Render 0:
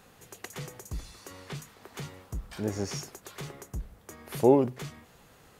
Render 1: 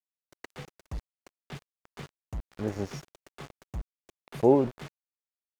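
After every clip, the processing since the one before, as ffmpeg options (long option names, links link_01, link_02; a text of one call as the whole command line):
ffmpeg -i in.wav -af "aeval=exprs='val(0)*gte(abs(val(0)),0.0168)':channel_layout=same,aemphasis=mode=reproduction:type=75kf" out.wav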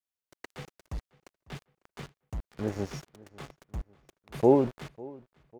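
ffmpeg -i in.wav -filter_complex "[0:a]asplit=2[link_01][link_02];[link_02]adelay=549,lowpass=frequency=3300:poles=1,volume=-22dB,asplit=2[link_03][link_04];[link_04]adelay=549,lowpass=frequency=3300:poles=1,volume=0.47,asplit=2[link_05][link_06];[link_06]adelay=549,lowpass=frequency=3300:poles=1,volume=0.47[link_07];[link_01][link_03][link_05][link_07]amix=inputs=4:normalize=0" out.wav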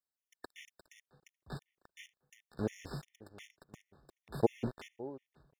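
ffmpeg -i in.wav -af "afftfilt=real='re*gt(sin(2*PI*2.8*pts/sr)*(1-2*mod(floor(b*sr/1024/1800),2)),0)':imag='im*gt(sin(2*PI*2.8*pts/sr)*(1-2*mod(floor(b*sr/1024/1800),2)),0)':win_size=1024:overlap=0.75,volume=-1.5dB" out.wav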